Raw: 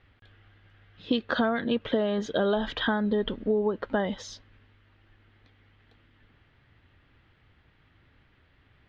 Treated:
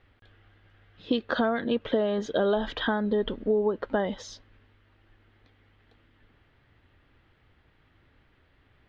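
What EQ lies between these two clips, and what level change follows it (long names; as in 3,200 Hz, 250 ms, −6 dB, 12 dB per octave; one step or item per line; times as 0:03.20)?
bass and treble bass −9 dB, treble +5 dB
spectral tilt −2 dB per octave
0.0 dB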